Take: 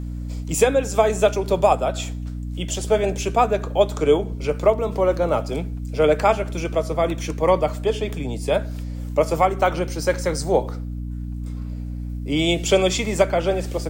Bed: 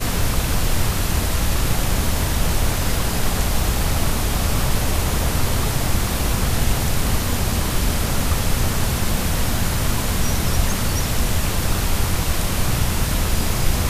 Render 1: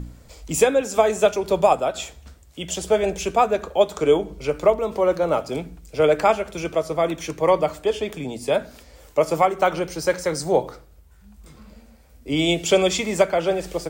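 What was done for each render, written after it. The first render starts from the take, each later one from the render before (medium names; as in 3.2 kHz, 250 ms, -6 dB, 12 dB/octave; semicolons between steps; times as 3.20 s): de-hum 60 Hz, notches 5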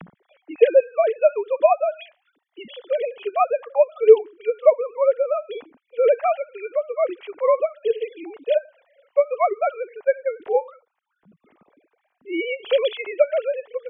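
formants replaced by sine waves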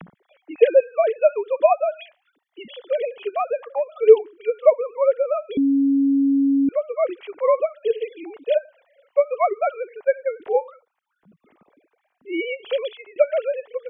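3.22–3.98 s: compression, threshold -18 dBFS; 5.57–6.69 s: bleep 276 Hz -14.5 dBFS; 12.39–13.16 s: fade out, to -19 dB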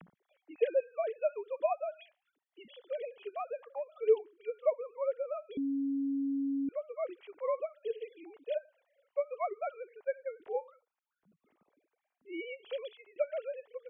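trim -15 dB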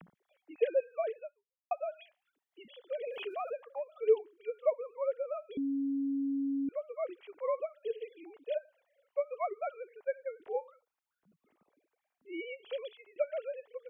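1.18–1.71 s: fade out exponential; 3.07–3.53 s: level flattener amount 70%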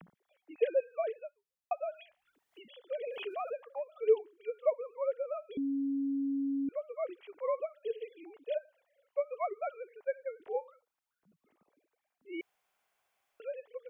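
1.94–2.81 s: three bands compressed up and down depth 70%; 12.41–13.40 s: room tone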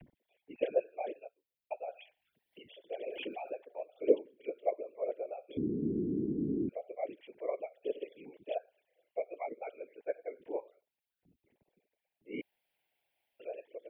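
static phaser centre 2.9 kHz, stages 4; whisper effect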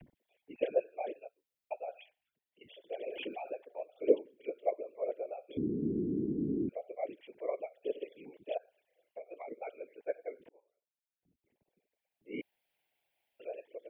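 1.97–2.61 s: fade out quadratic, to -15 dB; 8.57–9.48 s: compression, threshold -41 dBFS; 10.49–12.34 s: fade in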